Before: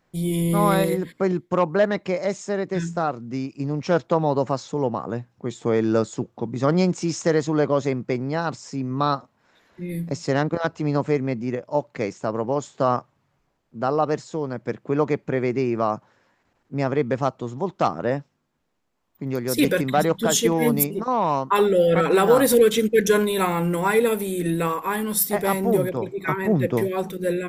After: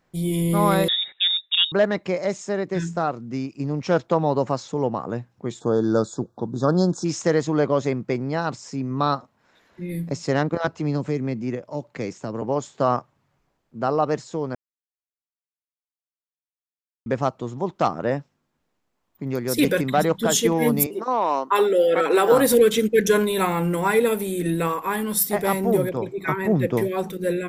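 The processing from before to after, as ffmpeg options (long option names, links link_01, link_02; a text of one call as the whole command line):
ffmpeg -i in.wav -filter_complex "[0:a]asettb=1/sr,asplit=3[link_01][link_02][link_03];[link_01]atrim=end=0.884[link_04];[link_02]atrim=start=0.88:end=1.72,asetpts=PTS-STARTPTS,afade=type=in:duration=0.004:curve=qsin,afade=type=out:start_time=0.836:duration=0.004:curve=qsin,lowpass=frequency=3300:width_type=q:width=0.5098,lowpass=frequency=3300:width_type=q:width=0.6013,lowpass=frequency=3300:width_type=q:width=0.9,lowpass=frequency=3300:width_type=q:width=2.563,afreqshift=-3900[link_05];[link_03]atrim=start=1.716[link_06];[link_04][link_05]acrossfade=duration=0.004:curve1=hsin:curve2=qsin[link_07];[link_07][link_06]acrossfade=duration=0.004:curve1=qsin:curve2=hsin,asplit=3[link_08][link_09][link_10];[link_08]afade=type=out:start_time=5.59:duration=0.02[link_11];[link_09]asuperstop=centerf=2400:order=20:qfactor=1.4,afade=type=in:start_time=5.59:duration=0.02,afade=type=out:start_time=7.04:duration=0.02[link_12];[link_10]afade=type=in:start_time=7.04:duration=0.02[link_13];[link_11][link_12][link_13]amix=inputs=3:normalize=0,asettb=1/sr,asplit=3[link_14][link_15][link_16];[link_14]atrim=end=10.674[link_17];[link_15]atrim=start=10.67:end=12.42,asetpts=PTS-STARTPTS,afade=type=in:duration=0.004:curve=qsin,afade=type=out:start_time=1.746:duration=0.004:curve=qsin,acrossover=split=370|3000[link_18][link_19][link_20];[link_19]acompressor=threshold=-31dB:ratio=6:attack=3.2:release=140:knee=2.83:detection=peak[link_21];[link_18][link_21][link_20]amix=inputs=3:normalize=0[link_22];[link_16]atrim=start=12.416[link_23];[link_17][link_22]acrossfade=duration=0.004:curve1=hsin:curve2=qsin[link_24];[link_24][link_23]acrossfade=duration=0.004:curve1=qsin:curve2=hsin,asettb=1/sr,asplit=3[link_25][link_26][link_27];[link_25]atrim=end=20.864[link_28];[link_26]atrim=start=20.86:end=22.32,asetpts=PTS-STARTPTS,afade=type=in:duration=0.004:curve=qsin,afade=type=out:start_time=1.456:duration=0.004:curve=qsin,highpass=frequency=270:width=0.5412,highpass=frequency=270:width=1.3066[link_29];[link_27]atrim=start=22.316[link_30];[link_28][link_29]acrossfade=duration=0.004:curve1=hsin:curve2=qsin[link_31];[link_31][link_30]acrossfade=duration=0.004:curve1=qsin:curve2=hsin,asplit=3[link_32][link_33][link_34];[link_32]atrim=end=14.55,asetpts=PTS-STARTPTS,afade=type=out:start_time=14.546:duration=0.004:curve=hsin[link_35];[link_33]atrim=start=14.55:end=17.06,asetpts=PTS-STARTPTS,volume=0[link_36];[link_34]atrim=start=17.06,asetpts=PTS-STARTPTS,afade=type=in:duration=0.004:curve=hsin[link_37];[link_35][link_36][link_37]concat=n=3:v=0:a=1" out.wav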